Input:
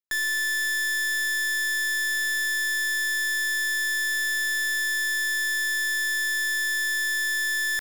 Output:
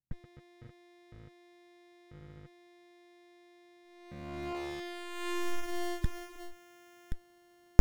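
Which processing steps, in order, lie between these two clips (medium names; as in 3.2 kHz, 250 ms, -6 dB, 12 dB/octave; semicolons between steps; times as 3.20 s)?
6.04–7.12 s: comb of notches 230 Hz; low-pass sweep 140 Hz -> 6.2 kHz, 3.84–6.52 s; sliding maximum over 65 samples; trim +14.5 dB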